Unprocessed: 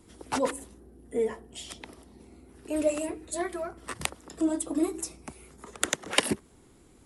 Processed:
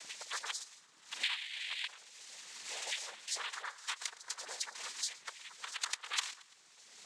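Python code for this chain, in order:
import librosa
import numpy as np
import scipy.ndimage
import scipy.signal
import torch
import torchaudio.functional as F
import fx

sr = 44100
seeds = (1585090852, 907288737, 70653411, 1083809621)

p1 = fx.spec_quant(x, sr, step_db=30)
p2 = fx.over_compress(p1, sr, threshold_db=-38.0, ratio=-1.0)
p3 = p1 + (p2 * 10.0 ** (0.5 / 20.0))
p4 = fx.freq_invert(p3, sr, carrier_hz=3200, at=(1.23, 1.87))
p5 = scipy.signal.sosfilt(scipy.signal.bessel(4, 2000.0, 'highpass', norm='mag', fs=sr, output='sos'), p4)
p6 = fx.dmg_crackle(p5, sr, seeds[0], per_s=260.0, level_db=-55.0)
p7 = fx.noise_vocoder(p6, sr, seeds[1], bands=6)
p8 = p7 + fx.echo_feedback(p7, sr, ms=112, feedback_pct=41, wet_db=-21.5, dry=0)
p9 = fx.band_squash(p8, sr, depth_pct=70)
y = p9 * 10.0 ** (-2.5 / 20.0)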